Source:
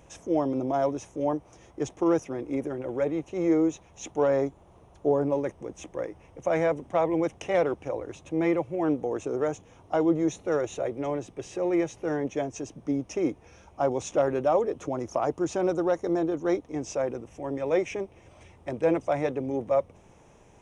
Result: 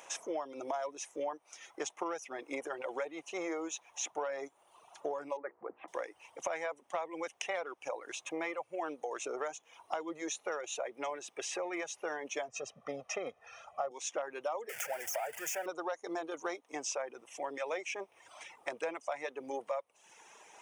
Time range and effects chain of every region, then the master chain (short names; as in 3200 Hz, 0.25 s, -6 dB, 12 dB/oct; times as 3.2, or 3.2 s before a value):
5.37–5.88 inverse Chebyshev low-pass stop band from 6900 Hz, stop band 70 dB + notches 60/120/180/240/300/360/420/480 Hz
12.48–13.91 LPF 2100 Hz 6 dB/oct + low shelf 240 Hz +6 dB + comb 1.6 ms, depth 82%
14.69–15.66 zero-crossing step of -27 dBFS + fixed phaser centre 1100 Hz, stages 6 + mismatched tape noise reduction encoder only
whole clip: reverb removal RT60 0.85 s; HPF 880 Hz 12 dB/oct; compressor 6:1, threshold -44 dBFS; gain +9 dB